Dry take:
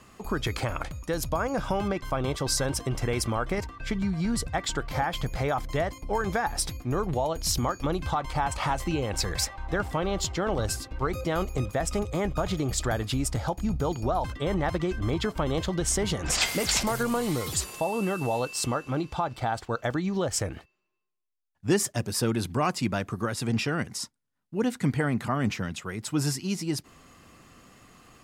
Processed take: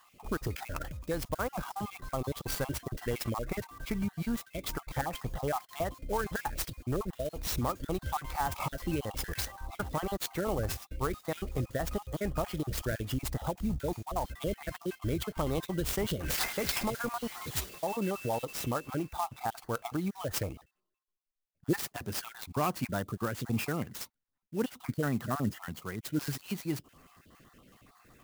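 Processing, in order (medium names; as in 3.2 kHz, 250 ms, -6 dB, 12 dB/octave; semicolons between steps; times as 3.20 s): random holes in the spectrogram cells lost 39%; sampling jitter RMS 0.037 ms; trim -4 dB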